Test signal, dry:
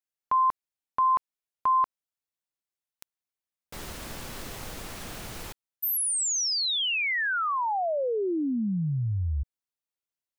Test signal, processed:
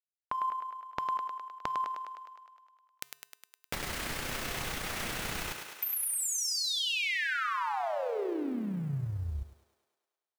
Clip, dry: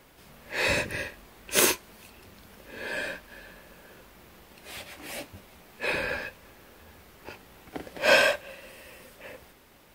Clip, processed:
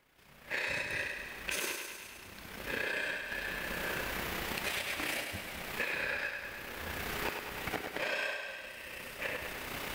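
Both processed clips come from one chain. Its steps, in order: companding laws mixed up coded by A; recorder AGC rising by 20 dB/s, up to +30 dB; AM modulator 31 Hz, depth 30%; peaking EQ 2.1 kHz +6 dB 1.6 oct; compression 6:1, threshold -28 dBFS; feedback comb 140 Hz, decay 0.78 s, harmonics odd, mix 50%; thinning echo 103 ms, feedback 69%, high-pass 260 Hz, level -5.5 dB

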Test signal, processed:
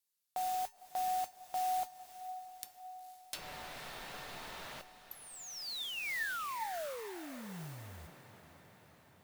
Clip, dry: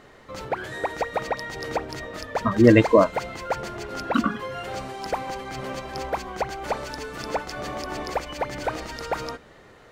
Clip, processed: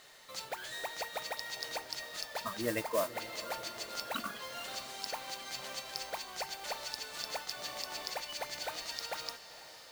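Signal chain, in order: pre-emphasis filter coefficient 0.97; low-pass that closes with the level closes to 1.6 kHz, closed at -33.5 dBFS; fifteen-band graphic EQ 160 Hz +7 dB, 630 Hz +6 dB, 4 kHz +5 dB; in parallel at -1 dB: compression, threshold -50 dBFS; on the sum: modulation noise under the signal 11 dB; feedback comb 900 Hz, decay 0.28 s, mix 70%; on a send: echo that smears into a reverb 490 ms, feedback 63%, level -14 dB; on the sum: trim +9.5 dB

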